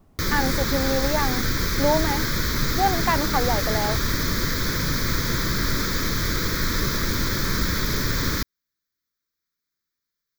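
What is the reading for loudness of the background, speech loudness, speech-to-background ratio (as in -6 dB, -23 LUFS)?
-24.0 LUFS, -26.5 LUFS, -2.5 dB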